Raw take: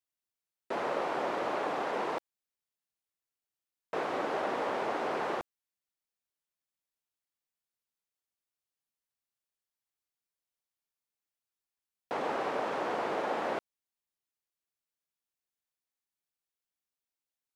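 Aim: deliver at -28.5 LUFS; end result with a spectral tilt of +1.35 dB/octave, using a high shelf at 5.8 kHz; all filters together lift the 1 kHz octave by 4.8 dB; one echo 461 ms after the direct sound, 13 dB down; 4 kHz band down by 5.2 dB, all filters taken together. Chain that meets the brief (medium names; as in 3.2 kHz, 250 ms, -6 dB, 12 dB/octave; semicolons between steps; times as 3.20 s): peaking EQ 1 kHz +6.5 dB; peaking EQ 4 kHz -6.5 dB; treble shelf 5.8 kHz -4 dB; delay 461 ms -13 dB; trim +2 dB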